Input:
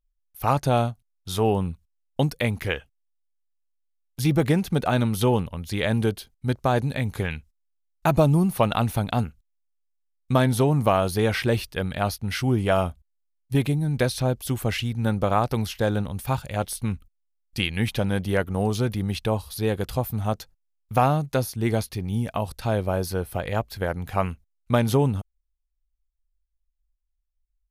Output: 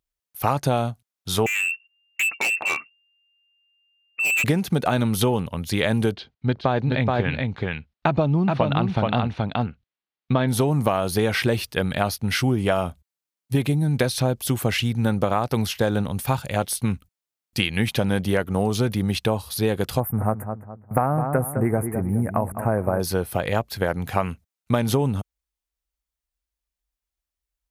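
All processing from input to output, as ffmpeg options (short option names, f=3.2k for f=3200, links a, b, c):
-filter_complex "[0:a]asettb=1/sr,asplit=3[a][b][c];[a]atrim=end=1.464[d];[b]atrim=start=1.46:end=4.44,asetpts=PTS-STARTPTS,afade=t=in:d=0.004:c=qsin,afade=t=out:st=2.976:d=0.004:c=qsin,lowpass=f=2.4k:t=q:w=0.5098,lowpass=f=2.4k:t=q:w=0.6013,lowpass=f=2.4k:t=q:w=0.9,lowpass=f=2.4k:t=q:w=2.563,afreqshift=-2800,asoftclip=type=hard:threshold=-25.5dB[e];[c]atrim=start=4.436[f];[d][e]acrossfade=d=0.004:c1=hsin:c2=qsin[g];[g][f]acrossfade=d=0.004:c1=qsin:c2=hsin,asettb=1/sr,asplit=3[h][i][j];[h]atrim=end=6.144[k];[i]atrim=start=6.14:end=10.48,asetpts=PTS-STARTPTS,afade=t=in:d=0.004:c=qsin,afade=t=out:st=4.336:d=0.004:c=qsin,lowpass=f=4.2k:w=0.5412,lowpass=f=4.2k:w=1.3066,aecho=1:1:426:0.596,atrim=end_sample=191394[l];[j]atrim=start=10.476[m];[k][l]acrossfade=d=0.004:c1=hsin:c2=qsin[n];[n][m]acrossfade=d=0.004:c1=qsin:c2=hsin,asettb=1/sr,asplit=3[o][p][q];[o]atrim=end=20.004[r];[p]atrim=start=20:end=23,asetpts=PTS-STARTPTS,afade=t=in:d=0.004:c=qsin,afade=t=out:st=2.996:d=0.004:c=qsin,asuperstop=centerf=4300:order=8:qfactor=0.63,asplit=2[s][t];[t]adelay=208,lowpass=f=1.7k:p=1,volume=-10dB,asplit=2[u][v];[v]adelay=208,lowpass=f=1.7k:p=1,volume=0.38,asplit=2[w][x];[x]adelay=208,lowpass=f=1.7k:p=1,volume=0.38,asplit=2[y][z];[z]adelay=208,lowpass=f=1.7k:p=1,volume=0.38[aa];[s][u][w][y][aa]amix=inputs=5:normalize=0,atrim=end_sample=132300[ab];[q]atrim=start=22.996[ac];[r][ab]acrossfade=d=0.004:c1=hsin:c2=qsin[ad];[ad][ac]acrossfade=d=0.004:c1=qsin:c2=hsin,highpass=100,acompressor=threshold=-23dB:ratio=6,volume=6dB"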